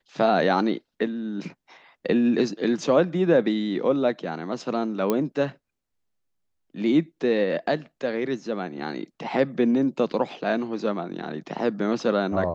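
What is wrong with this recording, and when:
5.10 s: pop -10 dBFS

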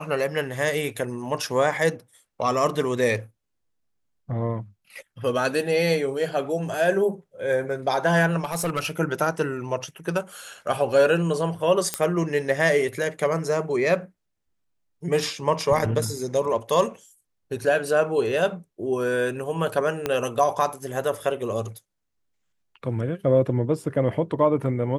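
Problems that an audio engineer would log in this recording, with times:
8.44–8.91 s: clipped -21 dBFS
11.94 s: pop -7 dBFS
20.06 s: pop -10 dBFS

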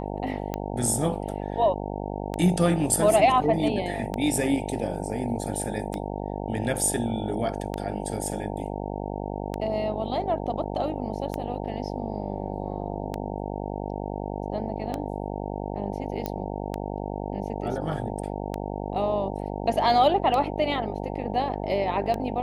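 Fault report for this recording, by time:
buzz 50 Hz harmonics 18 -32 dBFS
tick 33 1/3 rpm -15 dBFS
16.26 s: pop -14 dBFS

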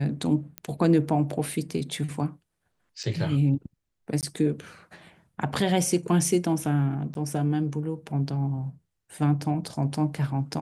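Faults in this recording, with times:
0.58 s: pop -16 dBFS
3.03–3.04 s: dropout 6.3 ms
4.21–4.23 s: dropout 18 ms
7.14–7.15 s: dropout 12 ms

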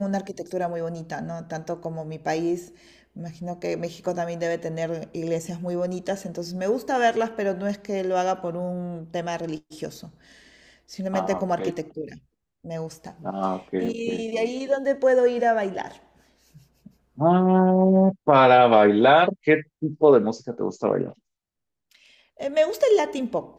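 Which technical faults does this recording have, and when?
13.85 s: dropout 3.7 ms

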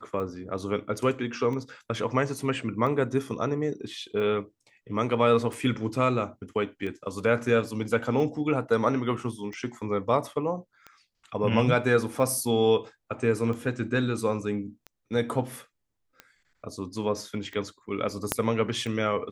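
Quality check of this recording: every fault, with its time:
tick 45 rpm -25 dBFS
18.32 s: pop -7 dBFS

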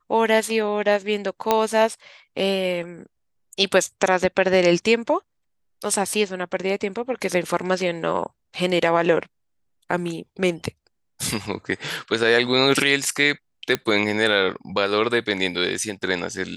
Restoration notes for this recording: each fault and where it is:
1.51 s: pop -4 dBFS
13.75 s: pop -7 dBFS

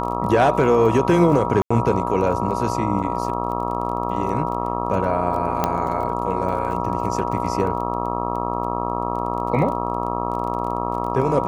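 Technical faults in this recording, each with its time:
buzz 60 Hz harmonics 22 -26 dBFS
crackle 20 per s -29 dBFS
whine 960 Hz -28 dBFS
1.62–1.71 s: dropout 85 ms
3.03–3.04 s: dropout 6.1 ms
5.64 s: pop -6 dBFS

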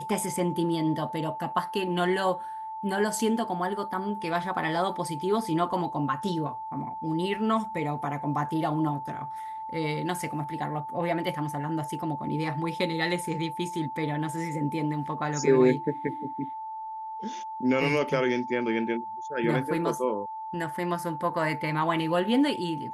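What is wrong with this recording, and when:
whine 880 Hz -34 dBFS

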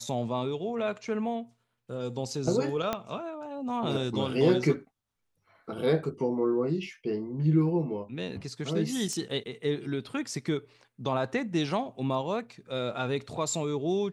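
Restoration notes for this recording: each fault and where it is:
2.93 s: pop -14 dBFS
9.13 s: pop -21 dBFS

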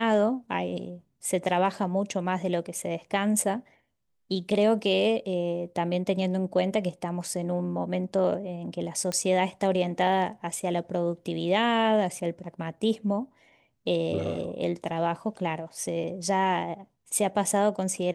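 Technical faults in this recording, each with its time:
9.12 s: pop -17 dBFS

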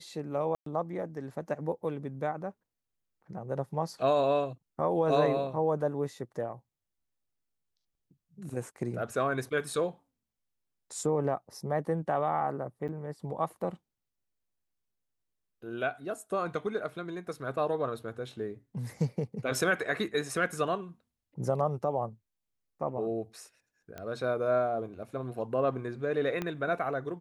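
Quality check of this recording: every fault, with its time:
0.55–0.66 s: dropout 113 ms
12.88–12.89 s: dropout 8.1 ms
23.98 s: pop -26 dBFS
26.42 s: pop -19 dBFS

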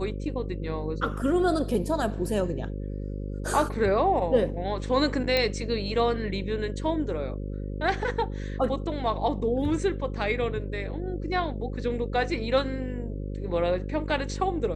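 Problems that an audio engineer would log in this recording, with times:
buzz 50 Hz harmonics 11 -33 dBFS
5.37 s: pop -11 dBFS

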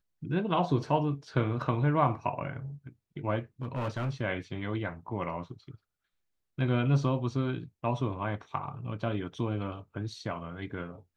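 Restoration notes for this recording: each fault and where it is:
3.62–4.11 s: clipped -27.5 dBFS

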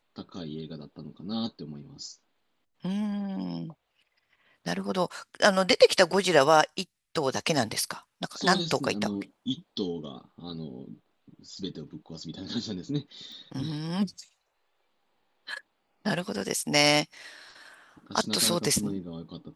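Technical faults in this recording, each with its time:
13.32 s: pop

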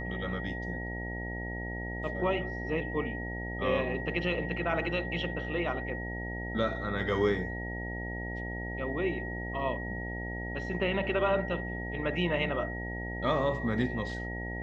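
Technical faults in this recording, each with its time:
buzz 60 Hz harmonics 15 -38 dBFS
whine 1.9 kHz -39 dBFS

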